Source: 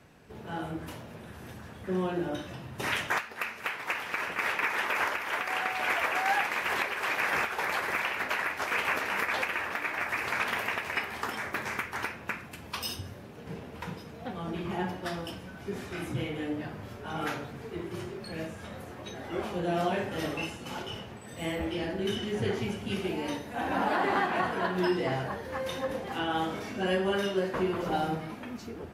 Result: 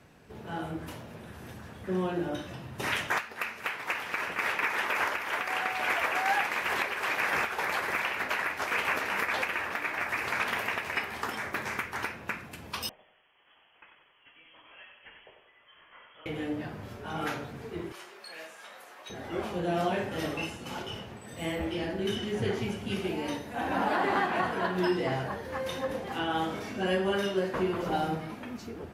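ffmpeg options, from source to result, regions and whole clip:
-filter_complex "[0:a]asettb=1/sr,asplit=3[a][b][c];[a]atrim=end=12.894[d];[b]atrim=start=12.89:end=16.26,asetpts=PTS-STARTPTS,afade=t=in:d=0.004:c=qsin,afade=t=out:st=3.366:d=0.004:c=qsin,aderivative,aecho=1:1:94|188|282|376|470:0.447|0.201|0.0905|0.0407|0.0183,atrim=end_sample=148617,lowpass=f=3k:t=q:w=0.5098,lowpass=f=3k:t=q:w=0.6013,lowpass=f=3k:t=q:w=0.9,lowpass=f=3k:t=q:w=2.563,afreqshift=-3500[e];[c]atrim=start=16.256[f];[d][e]acrossfade=d=0.004:c1=hsin:c2=qsin[g];[g][f]acrossfade=d=0.004:c1=qsin:c2=hsin,asettb=1/sr,asplit=3[h][i][j];[h]atrim=end=17.924[k];[i]atrim=start=17.92:end=19.1,asetpts=PTS-STARTPTS,afade=t=in:d=0.004:c=qsin,afade=t=out:st=1.176:d=0.004:c=qsin,highpass=840,asoftclip=type=hard:threshold=-37dB[l];[j]atrim=start=19.096[m];[k][l]acrossfade=d=0.004:c1=hsin:c2=qsin[n];[n][m]acrossfade=d=0.004:c1=qsin:c2=hsin"

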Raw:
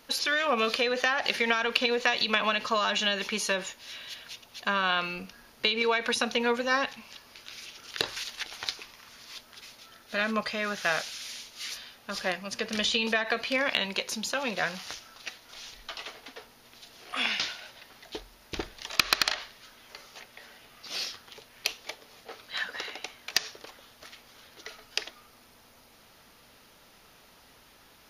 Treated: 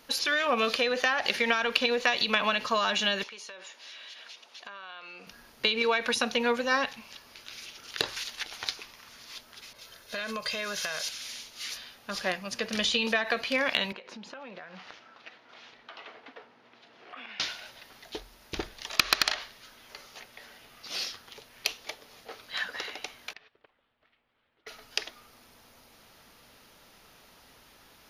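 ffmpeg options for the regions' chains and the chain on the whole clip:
-filter_complex "[0:a]asettb=1/sr,asplit=3[a][b][c];[a]atrim=end=3.234[d];[b]atrim=start=3.23:end=5.27,asetpts=PTS-STARTPTS,afade=t=in:d=0.004:c=qsin,afade=t=out:st=2.036:d=0.004:c=qsin,highpass=420,lowpass=6.6k,acompressor=threshold=-42dB:ratio=5:attack=3.2:release=140:knee=1:detection=peak[e];[c]atrim=start=5.266[f];[d][e]acrossfade=d=0.004:c1=hsin:c2=qsin[g];[g][f]acrossfade=d=0.004:c1=qsin:c2=hsin,asettb=1/sr,asplit=3[h][i][j];[h]atrim=end=9.734[k];[i]atrim=start=9.73:end=11.09,asetpts=PTS-STARTPTS,afade=t=in:d=0.004:c=qsin,afade=t=out:st=1.356:d=0.004:c=qsin,aecho=1:1:1.9:0.47,atrim=end_sample=59976,acompressor=threshold=-31dB:ratio=6:attack=3.2:release=140:knee=1:detection=peak,adynamicequalizer=threshold=0.00251:dfrequency=3100:dqfactor=0.7:tfrequency=3100:tqfactor=0.7:attack=5:release=100:ratio=0.375:range=4:mode=boostabove:tftype=highshelf[l];[j]atrim=start=11.086[m];[k][l]acrossfade=d=0.004:c1=hsin:c2=qsin[n];[n][m]acrossfade=d=0.004:c1=qsin:c2=hsin,asettb=1/sr,asplit=3[o][p][q];[o]atrim=end=13.924[r];[p]atrim=start=13.92:end=17.4,asetpts=PTS-STARTPTS,afade=t=in:d=0.004:c=qsin,afade=t=out:st=3.476:d=0.004:c=qsin,highpass=180,lowpass=2.3k,acompressor=threshold=-40dB:ratio=12:attack=3.2:release=140:knee=1:detection=peak[s];[q]atrim=start=17.396[t];[r][s]acrossfade=d=0.004:c1=hsin:c2=qsin[u];[u][t]acrossfade=d=0.004:c1=qsin:c2=hsin,asettb=1/sr,asplit=3[v][w][x];[v]atrim=end=23.334[y];[w]atrim=start=23.33:end=24.67,asetpts=PTS-STARTPTS,afade=t=in:d=0.004:c=qsin,afade=t=out:st=1.336:d=0.004:c=qsin,lowpass=f=3.1k:w=0.5412,lowpass=f=3.1k:w=1.3066,agate=range=-19dB:threshold=-45dB:ratio=16:release=100:detection=peak,acompressor=threshold=-56dB:ratio=2.5:attack=3.2:release=140:knee=1:detection=peak[z];[x]atrim=start=24.666[aa];[y][z]acrossfade=d=0.004:c1=hsin:c2=qsin[ab];[ab][aa]acrossfade=d=0.004:c1=qsin:c2=hsin"

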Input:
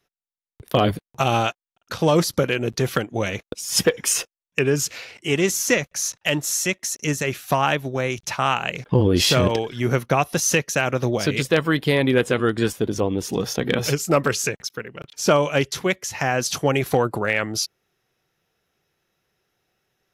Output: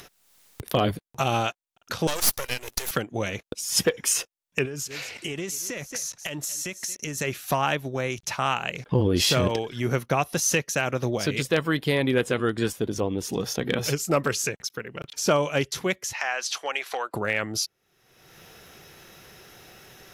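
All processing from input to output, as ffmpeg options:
-filter_complex "[0:a]asettb=1/sr,asplit=3[a][b][c];[a]atrim=end=2.074[d];[b]atrim=start=2.07:end=2.91,asetpts=PTS-STARTPTS,afade=t=in:d=0.004:c=qsin,afade=t=out:st=0.836:d=0.004:c=qsin,highpass=470,aemphasis=mode=production:type=riaa,aeval=exprs='max(val(0),0)':c=same[e];[c]atrim=start=2.906[f];[d][e]acrossfade=d=0.004:c1=hsin:c2=qsin[g];[g][f]acrossfade=d=0.004:c1=qsin:c2=hsin,asettb=1/sr,asplit=3[h][i][j];[h]atrim=end=4.654[k];[i]atrim=start=4.65:end=7.18,asetpts=PTS-STARTPTS,afade=t=in:d=0.004:c=qsin,afade=t=out:st=2.526:d=0.004:c=qsin,aecho=1:1:225:0.0794,atrim=end_sample=111573,acompressor=threshold=-26dB:ratio=10:attack=3.2:release=140:knee=1:detection=peak[l];[j]atrim=start=7.176[m];[k][l]acrossfade=d=0.004:c1=hsin:c2=qsin[n];[n][m]acrossfade=d=0.004:c1=qsin:c2=hsin,asettb=1/sr,asplit=3[o][p][q];[o]atrim=end=16.134[r];[p]atrim=start=16.13:end=17.14,asetpts=PTS-STARTPTS,afade=t=in:d=0.004:c=qsin,afade=t=out:st=1.006:d=0.004:c=qsin,highpass=700,lowpass=3.1k,aemphasis=mode=production:type=riaa[s];[q]atrim=start=17.136[t];[r][s]acrossfade=d=0.004:c1=hsin:c2=qsin[u];[u][t]acrossfade=d=0.004:c1=qsin:c2=hsin,equalizer=f=12k:t=o:w=2.2:g=2.5,acompressor=mode=upward:threshold=-22dB:ratio=2.5,volume=-4.5dB"

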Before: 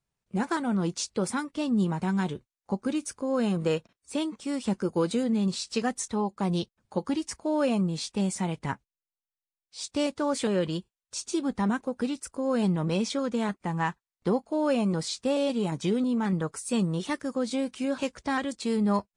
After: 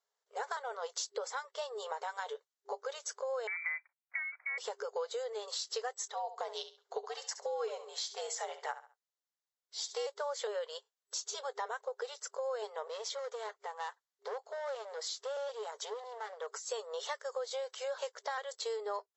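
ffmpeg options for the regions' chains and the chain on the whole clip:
-filter_complex "[0:a]asettb=1/sr,asplit=3[a][b][c];[a]atrim=end=3.474[d];[b]atrim=start=3.47:end=4.58,asetpts=PTS-STARTPTS,afade=t=in:d=0.004:c=qsin,afade=t=out:st=1.106:d=0.004:c=qsin,lowpass=f=2.1k:t=q:w=0.5098,lowpass=f=2.1k:t=q:w=0.6013,lowpass=f=2.1k:t=q:w=0.9,lowpass=f=2.1k:t=q:w=2.563,afreqshift=-2500,agate=range=-33dB:threshold=-55dB:ratio=3:release=100:detection=peak,highpass=f=660:w=0.5412,highpass=f=660:w=1.3066[e];[c]atrim=start=4.576[f];[d][e]acrossfade=d=0.004:c1=hsin:c2=qsin[g];[g][f]acrossfade=d=0.004:c1=qsin:c2=hsin,asettb=1/sr,asplit=3[h][i][j];[h]atrim=end=6.104[k];[i]atrim=start=6.1:end=10.07,asetpts=PTS-STARTPTS,afade=t=in:d=0.004:c=qsin,afade=t=out:st=3.966:d=0.004:c=qsin,afreqshift=-100,aecho=1:1:68|136|204:0.211|0.0486|0.0112,atrim=end_sample=175077[l];[j]atrim=start=10.066[m];[k][l]acrossfade=d=0.004:c1=hsin:c2=qsin[n];[n][m]acrossfade=d=0.004:c1=qsin:c2=hsin,asettb=1/sr,asplit=3[o][p][q];[o]atrim=end=12.874[r];[p]atrim=start=12.87:end=16.64,asetpts=PTS-STARTPTS,afade=t=in:d=0.004:c=qsin,afade=t=out:st=3.766:d=0.004:c=qsin,asoftclip=type=hard:threshold=-25.5dB,acompressor=threshold=-36dB:ratio=3:attack=3.2:release=140:knee=1:detection=peak[s];[q]atrim=start=16.636[t];[r][s]acrossfade=d=0.004:c1=hsin:c2=qsin[u];[u][t]acrossfade=d=0.004:c1=qsin:c2=hsin,afftfilt=real='re*between(b*sr/4096,400,7800)':imag='im*between(b*sr/4096,400,7800)':win_size=4096:overlap=0.75,equalizer=f=2.5k:w=6.2:g=-15,acompressor=threshold=-38dB:ratio=4,volume=2dB"

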